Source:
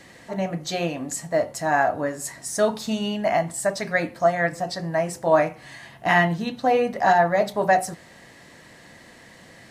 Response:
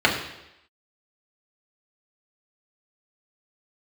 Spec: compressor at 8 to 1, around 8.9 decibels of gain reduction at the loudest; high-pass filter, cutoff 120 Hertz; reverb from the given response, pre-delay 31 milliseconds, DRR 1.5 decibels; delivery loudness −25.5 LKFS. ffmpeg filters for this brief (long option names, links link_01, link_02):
-filter_complex "[0:a]highpass=120,acompressor=threshold=-22dB:ratio=8,asplit=2[link_01][link_02];[1:a]atrim=start_sample=2205,adelay=31[link_03];[link_02][link_03]afir=irnorm=-1:irlink=0,volume=-21.5dB[link_04];[link_01][link_04]amix=inputs=2:normalize=0,volume=0.5dB"